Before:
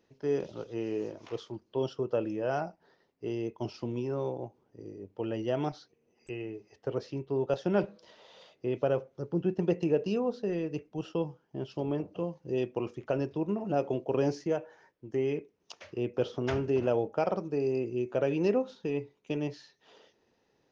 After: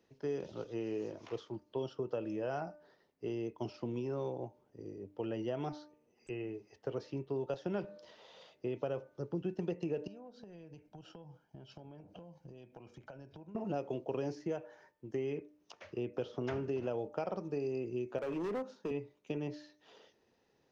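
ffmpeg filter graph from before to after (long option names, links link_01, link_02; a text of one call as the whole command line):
ffmpeg -i in.wav -filter_complex "[0:a]asettb=1/sr,asplit=3[link_01][link_02][link_03];[link_01]atrim=end=10.074[link_04];[link_02]atrim=start=10.07:end=13.55,asetpts=PTS-STARTPTS,afade=type=in:duration=0.004:curve=qsin,afade=type=out:start_time=3.476:duration=0.004:curve=qsin,acompressor=threshold=-45dB:ratio=10:attack=3.2:release=140:knee=1:detection=peak,aecho=1:1:1.3:0.45,atrim=end_sample=153468[link_05];[link_03]atrim=start=13.546[link_06];[link_04][link_05]acrossfade=duration=0.004:curve1=hsin:curve2=qsin[link_07];[link_07][link_06]acrossfade=duration=0.004:curve1=qsin:curve2=hsin,asettb=1/sr,asplit=3[link_08][link_09][link_10];[link_08]atrim=end=18.184[link_11];[link_09]atrim=start=18.18:end=18.91,asetpts=PTS-STARTPTS,afade=type=in:duration=0.004:curve=qsin,afade=type=out:start_time=0.726:duration=0.004:curve=qsin,highpass=frequency=160:width=0.5412,highpass=frequency=160:width=1.3066,equalizer=frequency=3500:width=2.3:gain=-11.5,volume=28dB,asoftclip=hard,volume=-28dB[link_12];[link_10]atrim=start=18.906[link_13];[link_11][link_12]acrossfade=duration=0.004:curve1=hsin:curve2=qsin[link_14];[link_14][link_13]acrossfade=duration=0.004:curve1=qsin:curve2=hsin,bandreject=frequency=299.3:width_type=h:width=4,bandreject=frequency=598.6:width_type=h:width=4,bandreject=frequency=897.9:width_type=h:width=4,bandreject=frequency=1197.2:width_type=h:width=4,bandreject=frequency=1496.5:width_type=h:width=4,bandreject=frequency=1795.8:width_type=h:width=4,acrossover=split=97|2500[link_15][link_16][link_17];[link_15]acompressor=threshold=-58dB:ratio=4[link_18];[link_16]acompressor=threshold=-32dB:ratio=4[link_19];[link_17]acompressor=threshold=-57dB:ratio=4[link_20];[link_18][link_19][link_20]amix=inputs=3:normalize=0,volume=-2dB" out.wav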